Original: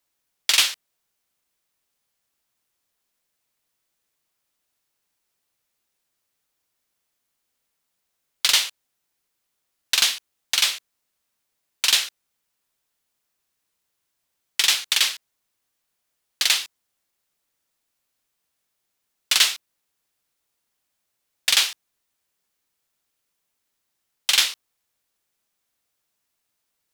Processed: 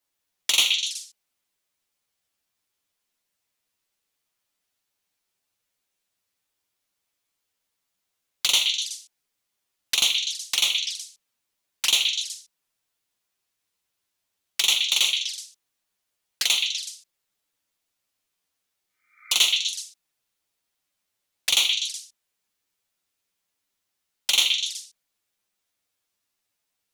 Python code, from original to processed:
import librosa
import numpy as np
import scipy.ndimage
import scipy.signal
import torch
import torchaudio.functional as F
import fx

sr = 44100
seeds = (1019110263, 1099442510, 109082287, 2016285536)

y = fx.echo_stepped(x, sr, ms=124, hz=2900.0, octaves=0.7, feedback_pct=70, wet_db=-2.5)
y = fx.env_flanger(y, sr, rest_ms=10.6, full_db=-20.0)
y = fx.spec_repair(y, sr, seeds[0], start_s=18.87, length_s=0.46, low_hz=1200.0, high_hz=2400.0, source='both')